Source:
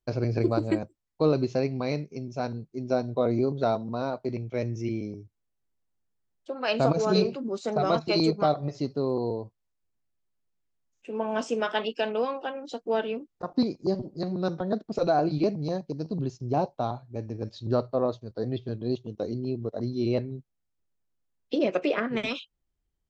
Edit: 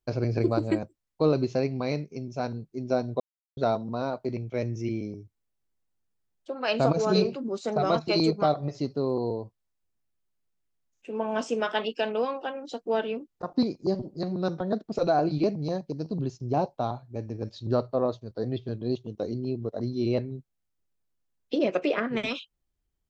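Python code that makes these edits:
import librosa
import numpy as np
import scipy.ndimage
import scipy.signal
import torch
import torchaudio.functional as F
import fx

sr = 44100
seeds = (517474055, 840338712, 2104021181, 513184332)

y = fx.edit(x, sr, fx.silence(start_s=3.2, length_s=0.37), tone=tone)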